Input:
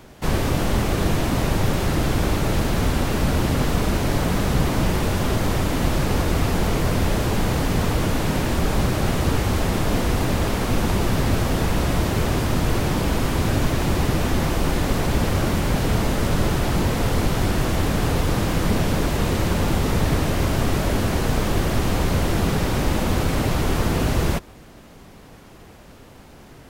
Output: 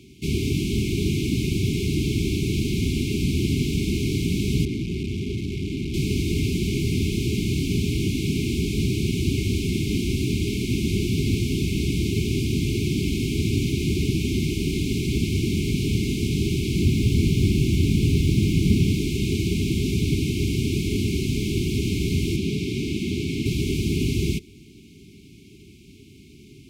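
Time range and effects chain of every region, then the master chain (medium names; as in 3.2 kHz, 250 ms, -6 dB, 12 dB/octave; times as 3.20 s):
4.65–5.94 s: low-pass 2.4 kHz 6 dB/octave + hard clipper -22 dBFS
16.82–18.92 s: tone controls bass +5 dB, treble -1 dB + word length cut 8-bit, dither triangular
22.36–23.46 s: high-pass 140 Hz 6 dB/octave + treble shelf 7 kHz -9 dB
whole clip: FFT band-reject 420–2100 Hz; high-pass 69 Hz; treble shelf 11 kHz -10.5 dB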